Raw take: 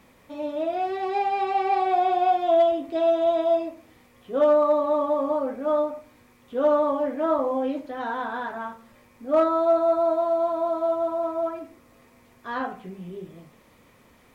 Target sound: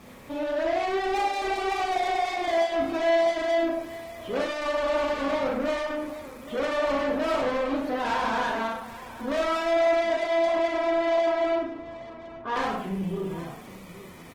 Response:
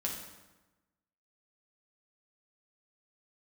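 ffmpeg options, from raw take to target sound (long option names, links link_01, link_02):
-filter_complex "[0:a]asplit=3[link_01][link_02][link_03];[link_01]afade=type=out:start_time=9.62:duration=0.02[link_04];[link_02]lowpass=1200,afade=type=in:start_time=9.62:duration=0.02,afade=type=out:start_time=12.55:duration=0.02[link_05];[link_03]afade=type=in:start_time=12.55:duration=0.02[link_06];[link_04][link_05][link_06]amix=inputs=3:normalize=0,bandreject=frequency=60.25:width_type=h:width=4,bandreject=frequency=120.5:width_type=h:width=4,bandreject=frequency=180.75:width_type=h:width=4,bandreject=frequency=241:width_type=h:width=4,bandreject=frequency=301.25:width_type=h:width=4,bandreject=frequency=361.5:width_type=h:width=4,bandreject=frequency=421.75:width_type=h:width=4,bandreject=frequency=482:width_type=h:width=4,bandreject=frequency=542.25:width_type=h:width=4,bandreject=frequency=602.5:width_type=h:width=4,bandreject=frequency=662.75:width_type=h:width=4,bandreject=frequency=723:width_type=h:width=4,bandreject=frequency=783.25:width_type=h:width=4,bandreject=frequency=843.5:width_type=h:width=4,bandreject=frequency=903.75:width_type=h:width=4,bandreject=frequency=964:width_type=h:width=4,bandreject=frequency=1024.25:width_type=h:width=4,bandreject=frequency=1084.5:width_type=h:width=4,bandreject=frequency=1144.75:width_type=h:width=4,bandreject=frequency=1205:width_type=h:width=4,bandreject=frequency=1265.25:width_type=h:width=4,bandreject=frequency=1325.5:width_type=h:width=4,bandreject=frequency=1385.75:width_type=h:width=4,bandreject=frequency=1446:width_type=h:width=4,bandreject=frequency=1506.25:width_type=h:width=4,bandreject=frequency=1566.5:width_type=h:width=4,bandreject=frequency=1626.75:width_type=h:width=4,bandreject=frequency=1687:width_type=h:width=4,bandreject=frequency=1747.25:width_type=h:width=4,bandreject=frequency=1807.5:width_type=h:width=4,bandreject=frequency=1867.75:width_type=h:width=4,bandreject=frequency=1928:width_type=h:width=4,bandreject=frequency=1988.25:width_type=h:width=4,bandreject=frequency=2048.5:width_type=h:width=4,bandreject=frequency=2108.75:width_type=h:width=4,acompressor=threshold=-23dB:ratio=5,asoftclip=type=tanh:threshold=-34.5dB,asplit=2[link_07][link_08];[link_08]adelay=36,volume=-4.5dB[link_09];[link_07][link_09]amix=inputs=2:normalize=0,aecho=1:1:63|99|830:0.376|0.2|0.178,volume=8dB" -ar 48000 -c:a libopus -b:a 16k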